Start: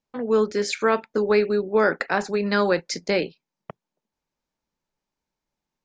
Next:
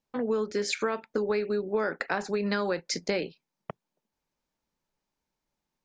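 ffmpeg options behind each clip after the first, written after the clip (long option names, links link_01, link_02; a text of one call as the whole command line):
ffmpeg -i in.wav -af "acompressor=threshold=-25dB:ratio=6" out.wav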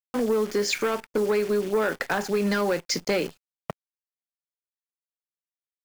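ffmpeg -i in.wav -af "acrusher=bits=8:dc=4:mix=0:aa=0.000001,bandreject=frequency=3900:width=17,aeval=exprs='0.224*(cos(1*acos(clip(val(0)/0.224,-1,1)))-cos(1*PI/2))+0.0447*(cos(5*acos(clip(val(0)/0.224,-1,1)))-cos(5*PI/2))':channel_layout=same" out.wav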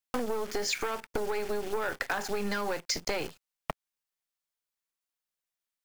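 ffmpeg -i in.wav -filter_complex "[0:a]acrossover=split=610|1400[link_01][link_02][link_03];[link_01]aeval=exprs='max(val(0),0)':channel_layout=same[link_04];[link_04][link_02][link_03]amix=inputs=3:normalize=0,acompressor=threshold=-35dB:ratio=4,volume=5.5dB" out.wav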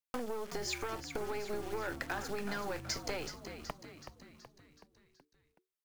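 ffmpeg -i in.wav -filter_complex "[0:a]asplit=7[link_01][link_02][link_03][link_04][link_05][link_06][link_07];[link_02]adelay=375,afreqshift=-75,volume=-9dB[link_08];[link_03]adelay=750,afreqshift=-150,volume=-14.2dB[link_09];[link_04]adelay=1125,afreqshift=-225,volume=-19.4dB[link_10];[link_05]adelay=1500,afreqshift=-300,volume=-24.6dB[link_11];[link_06]adelay=1875,afreqshift=-375,volume=-29.8dB[link_12];[link_07]adelay=2250,afreqshift=-450,volume=-35dB[link_13];[link_01][link_08][link_09][link_10][link_11][link_12][link_13]amix=inputs=7:normalize=0,volume=-7dB" out.wav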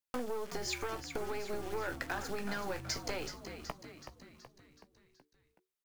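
ffmpeg -i in.wav -filter_complex "[0:a]asplit=2[link_01][link_02];[link_02]adelay=16,volume=-12dB[link_03];[link_01][link_03]amix=inputs=2:normalize=0" out.wav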